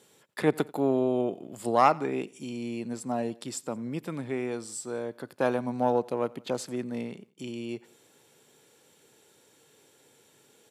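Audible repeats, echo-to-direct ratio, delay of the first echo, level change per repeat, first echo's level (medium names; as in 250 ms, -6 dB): 2, -22.5 dB, 88 ms, -4.5 dB, -24.0 dB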